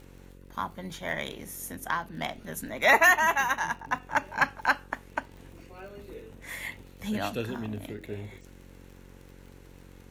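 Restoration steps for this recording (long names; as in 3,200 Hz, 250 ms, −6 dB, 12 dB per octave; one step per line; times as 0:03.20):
click removal
hum removal 45.7 Hz, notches 12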